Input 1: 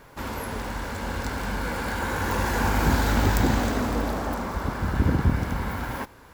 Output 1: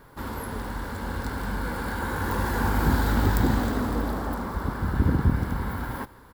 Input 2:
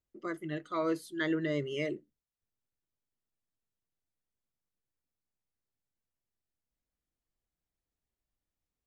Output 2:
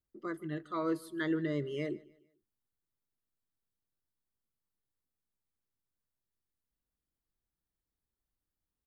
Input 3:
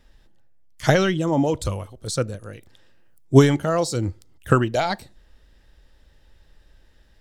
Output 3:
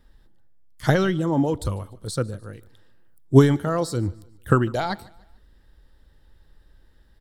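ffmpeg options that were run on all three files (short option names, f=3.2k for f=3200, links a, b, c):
-af "equalizer=f=630:t=o:w=0.67:g=-5,equalizer=f=2.5k:t=o:w=0.67:g=-9,equalizer=f=6.3k:t=o:w=0.67:g=-9,aecho=1:1:149|298|447:0.0708|0.0276|0.0108"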